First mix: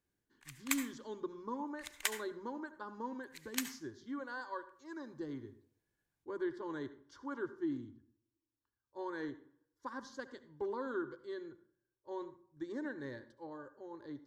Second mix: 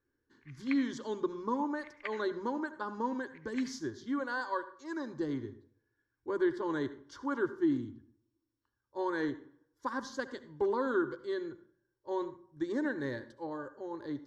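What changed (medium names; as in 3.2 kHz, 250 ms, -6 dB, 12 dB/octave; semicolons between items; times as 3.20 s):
speech +8.0 dB; background: add four-pole ladder low-pass 2.5 kHz, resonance 55%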